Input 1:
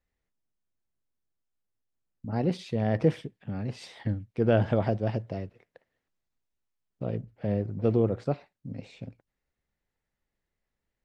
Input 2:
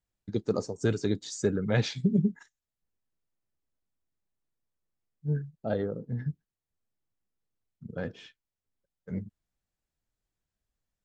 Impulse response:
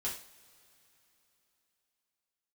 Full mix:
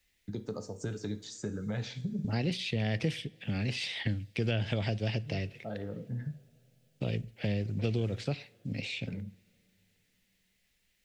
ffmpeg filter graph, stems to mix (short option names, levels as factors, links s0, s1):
-filter_complex "[0:a]highshelf=f=1700:t=q:w=1.5:g=13.5,volume=1.26,asplit=3[s0][s1][s2];[s1]volume=0.0841[s3];[1:a]equalizer=f=390:t=o:w=0.22:g=-7,acompressor=threshold=0.02:ratio=3,volume=0.75,asplit=2[s4][s5];[s5]volume=0.422[s6];[s2]apad=whole_len=486911[s7];[s4][s7]sidechaincompress=threshold=0.0251:ratio=8:attack=16:release=920[s8];[2:a]atrim=start_sample=2205[s9];[s3][s6]amix=inputs=2:normalize=0[s10];[s10][s9]afir=irnorm=-1:irlink=0[s11];[s0][s8][s11]amix=inputs=3:normalize=0,acrossover=split=160|3700[s12][s13][s14];[s12]acompressor=threshold=0.0251:ratio=4[s15];[s13]acompressor=threshold=0.02:ratio=4[s16];[s14]acompressor=threshold=0.00398:ratio=4[s17];[s15][s16][s17]amix=inputs=3:normalize=0"